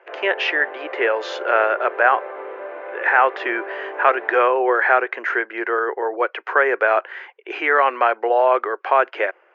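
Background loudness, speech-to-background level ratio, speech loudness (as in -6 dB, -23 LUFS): -33.0 LUFS, 13.5 dB, -19.5 LUFS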